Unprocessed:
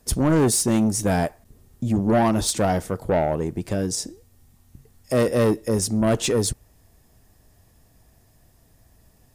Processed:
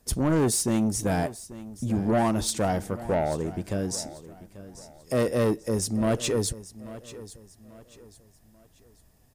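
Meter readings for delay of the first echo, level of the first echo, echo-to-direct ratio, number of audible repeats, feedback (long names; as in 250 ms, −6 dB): 839 ms, −16.5 dB, −16.0 dB, 3, 36%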